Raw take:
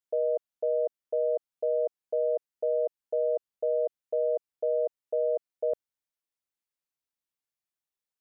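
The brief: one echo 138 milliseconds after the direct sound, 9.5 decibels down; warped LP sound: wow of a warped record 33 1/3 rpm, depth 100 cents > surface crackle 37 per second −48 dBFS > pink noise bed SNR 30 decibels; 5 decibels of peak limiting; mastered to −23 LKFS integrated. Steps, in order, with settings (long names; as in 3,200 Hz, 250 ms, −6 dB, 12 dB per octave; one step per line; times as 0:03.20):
brickwall limiter −25.5 dBFS
single-tap delay 138 ms −9.5 dB
wow of a warped record 33 1/3 rpm, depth 100 cents
surface crackle 37 per second −48 dBFS
pink noise bed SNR 30 dB
level +12.5 dB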